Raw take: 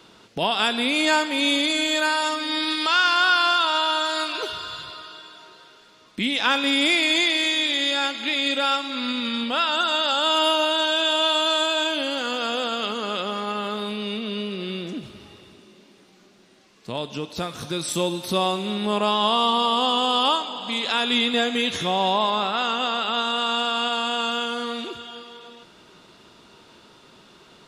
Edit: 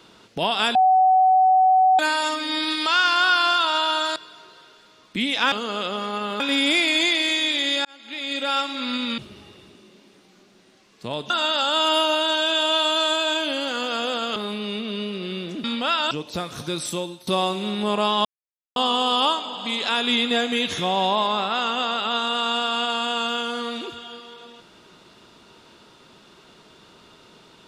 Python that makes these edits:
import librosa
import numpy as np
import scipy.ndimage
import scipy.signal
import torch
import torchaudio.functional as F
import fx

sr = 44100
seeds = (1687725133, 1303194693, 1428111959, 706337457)

y = fx.edit(x, sr, fx.bleep(start_s=0.75, length_s=1.24, hz=751.0, db=-12.5),
    fx.cut(start_s=4.16, length_s=1.03),
    fx.fade_in_span(start_s=8.0, length_s=0.79),
    fx.swap(start_s=9.33, length_s=0.47, other_s=15.02, other_length_s=2.12),
    fx.move(start_s=12.86, length_s=0.88, to_s=6.55),
    fx.fade_out_to(start_s=17.8, length_s=0.5, floor_db=-19.5),
    fx.silence(start_s=19.28, length_s=0.51), tone=tone)